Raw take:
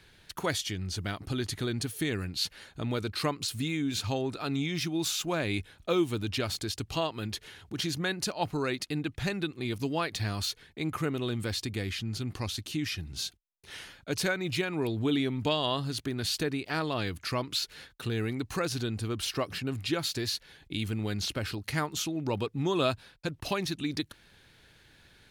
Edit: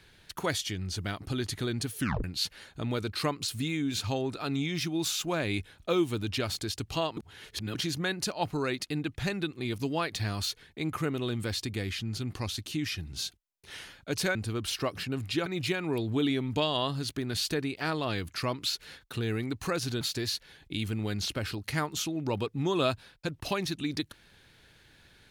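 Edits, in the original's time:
1.99 s: tape stop 0.25 s
7.17–7.75 s: reverse
18.90–20.01 s: move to 14.35 s

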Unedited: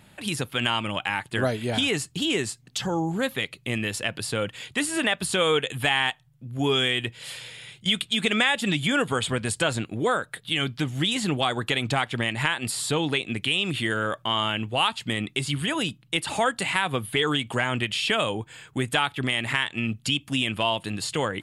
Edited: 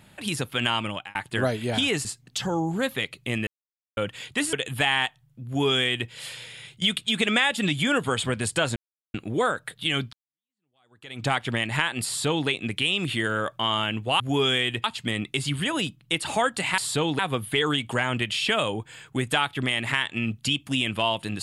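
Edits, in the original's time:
0.85–1.15 s: fade out
2.05–2.45 s: delete
3.87–4.37 s: mute
4.93–5.57 s: delete
6.50–7.14 s: copy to 14.86 s
9.80 s: insert silence 0.38 s
10.79–11.93 s: fade in exponential
12.73–13.14 s: copy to 16.80 s

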